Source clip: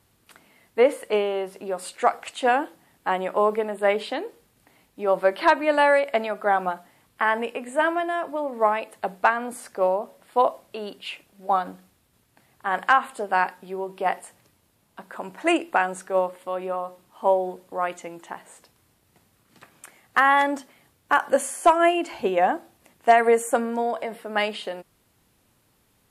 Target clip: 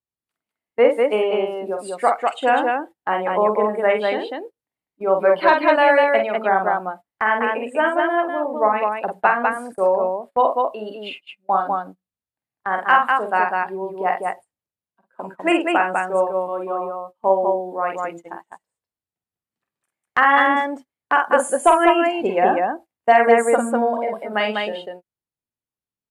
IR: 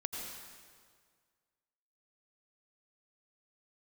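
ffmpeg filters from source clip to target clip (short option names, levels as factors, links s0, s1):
-af "afftdn=nr=14:nf=-34,aecho=1:1:46.65|198.3:0.562|0.708,agate=range=0.0794:threshold=0.0141:ratio=16:detection=peak,volume=1.26"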